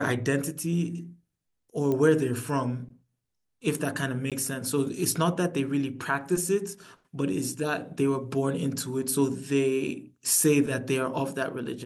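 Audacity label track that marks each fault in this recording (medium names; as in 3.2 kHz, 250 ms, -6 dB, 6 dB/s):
1.920000	1.920000	pop -17 dBFS
4.300000	4.320000	dropout 17 ms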